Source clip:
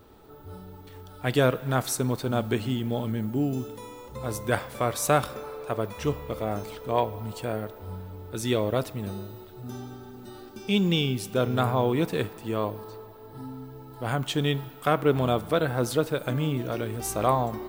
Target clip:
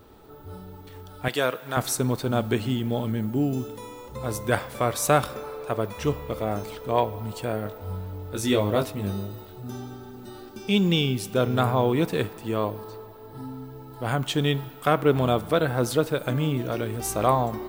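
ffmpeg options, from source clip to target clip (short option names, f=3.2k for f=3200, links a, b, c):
-filter_complex "[0:a]asettb=1/sr,asplit=3[a][b][c];[a]atrim=end=1.284[d];[b]atrim=start=1.28:end=1.77,asetpts=PTS-STARTPTS,afade=t=in:d=0.004:c=qsin,afade=t=out:st=0.486:d=0.004:c=qsin,highpass=f=730:p=1[e];[c]atrim=start=1.766[f];[d][e]acrossfade=d=0.004:c1=hsin:c2=qsin[g];[g][f]acrossfade=d=0.004:c1=qsin:c2=hsin,asettb=1/sr,asplit=3[h][i][j];[h]atrim=end=7.634[k];[i]atrim=start=7.63:end=9.59,asetpts=PTS-STARTPTS,afade=t=in:d=0.004:c=qsin,afade=t=out:st=1.956:d=0.004:c=qsin,asplit=2[l][m];[m]adelay=20,volume=-4dB[n];[l][n]amix=inputs=2:normalize=0,atrim=end_sample=86436[o];[j]atrim=start=9.586[p];[k][o]acrossfade=d=0.004:c1=hsin:c2=qsin[q];[q][p]acrossfade=d=0.004:c1=qsin:c2=hsin,volume=2dB"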